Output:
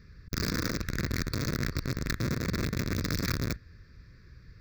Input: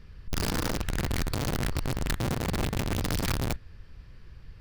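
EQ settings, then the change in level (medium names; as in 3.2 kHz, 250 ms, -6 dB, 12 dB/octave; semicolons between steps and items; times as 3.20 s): high-pass 88 Hz 6 dB/octave; static phaser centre 3 kHz, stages 6; +1.5 dB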